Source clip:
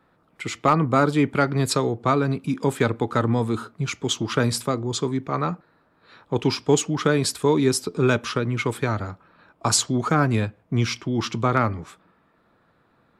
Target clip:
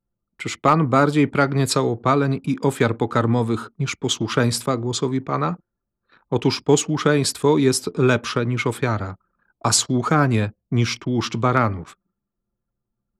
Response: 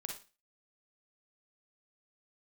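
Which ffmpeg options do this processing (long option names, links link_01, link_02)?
-af "anlmdn=0.0398,volume=2.5dB"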